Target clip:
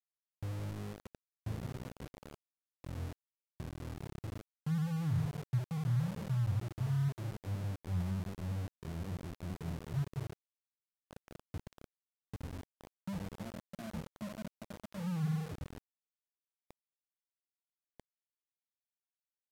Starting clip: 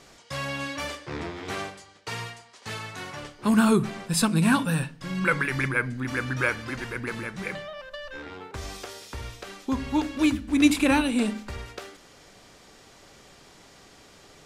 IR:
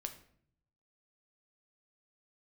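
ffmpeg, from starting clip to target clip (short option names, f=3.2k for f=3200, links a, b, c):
-af "areverse,acompressor=threshold=-34dB:ratio=12,areverse,alimiter=level_in=11dB:limit=-24dB:level=0:latency=1:release=225,volume=-11dB,asuperpass=centerf=160:order=4:qfactor=1.5,aeval=exprs='val(0)*gte(abs(val(0)),0.00237)':c=same,asetrate=32667,aresample=44100,volume=12.5dB"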